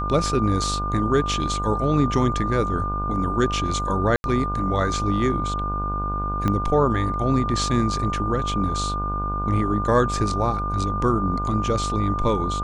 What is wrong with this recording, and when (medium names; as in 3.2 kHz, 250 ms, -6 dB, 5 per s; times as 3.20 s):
buzz 50 Hz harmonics 30 -28 dBFS
whine 1.2 kHz -26 dBFS
4.16–4.24 s: dropout 81 ms
6.48 s: pop -11 dBFS